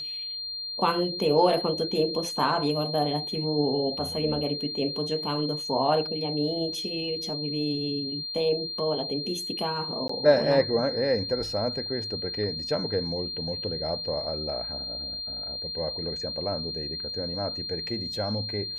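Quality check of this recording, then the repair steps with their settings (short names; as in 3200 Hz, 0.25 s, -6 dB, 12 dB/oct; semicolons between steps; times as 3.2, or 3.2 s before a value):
tone 4200 Hz -32 dBFS
10.08–10.09 gap 14 ms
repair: notch 4200 Hz, Q 30; interpolate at 10.08, 14 ms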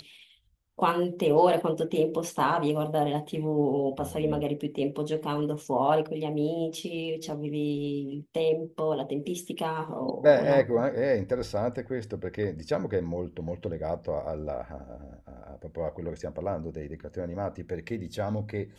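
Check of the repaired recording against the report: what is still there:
none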